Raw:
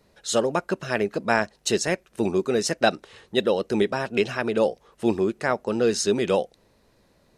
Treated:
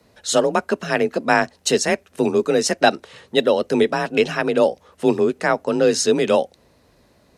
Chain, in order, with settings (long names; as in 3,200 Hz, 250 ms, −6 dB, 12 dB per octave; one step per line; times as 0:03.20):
frequency shifter +33 Hz
level +5 dB